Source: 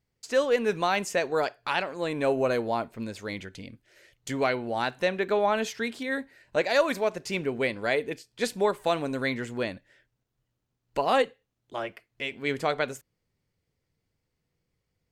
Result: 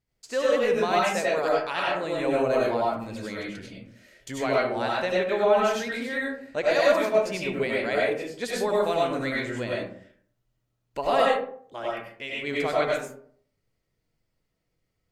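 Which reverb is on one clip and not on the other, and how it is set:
comb and all-pass reverb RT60 0.57 s, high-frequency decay 0.45×, pre-delay 55 ms, DRR −5 dB
level −4 dB

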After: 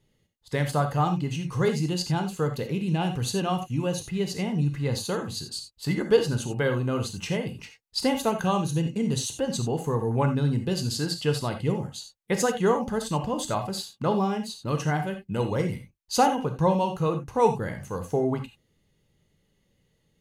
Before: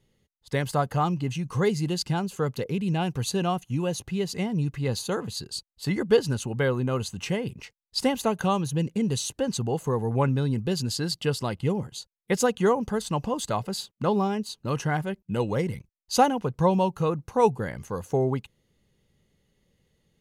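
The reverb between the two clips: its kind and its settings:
reverb whose tail is shaped and stops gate 110 ms flat, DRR 5.5 dB
level −1 dB

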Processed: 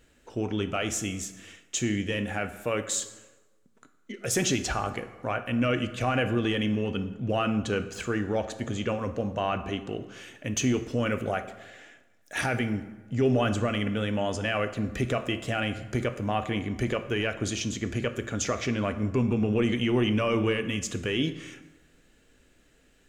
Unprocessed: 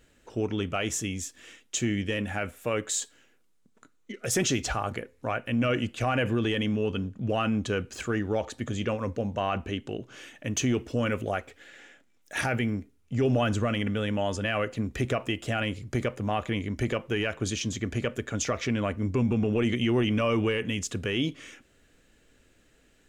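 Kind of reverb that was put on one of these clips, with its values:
dense smooth reverb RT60 1.2 s, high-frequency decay 0.65×, DRR 9.5 dB

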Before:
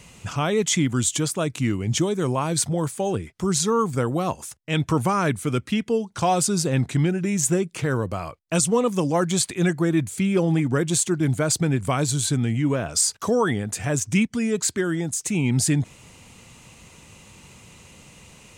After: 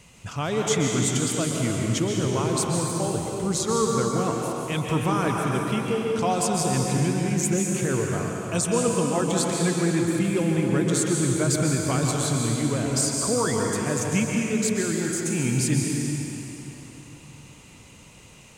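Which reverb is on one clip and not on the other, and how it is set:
dense smooth reverb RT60 3.4 s, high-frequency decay 0.85×, pre-delay 115 ms, DRR −1 dB
level −4.5 dB

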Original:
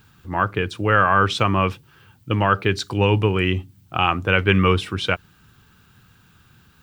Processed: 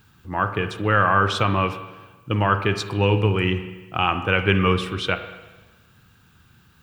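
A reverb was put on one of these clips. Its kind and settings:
spring reverb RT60 1.2 s, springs 38/50 ms, chirp 30 ms, DRR 9 dB
level −2 dB

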